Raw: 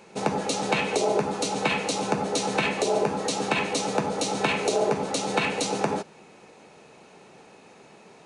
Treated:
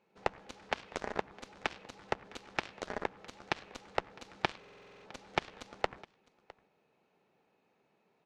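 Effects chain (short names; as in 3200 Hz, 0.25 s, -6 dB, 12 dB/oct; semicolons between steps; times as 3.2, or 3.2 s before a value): added harmonics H 3 -9 dB, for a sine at -8 dBFS; LPF 3900 Hz 12 dB/oct; on a send: echo 0.658 s -22 dB; on the sum: stuck buffer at 4.59, samples 2048, times 9; gain +1 dB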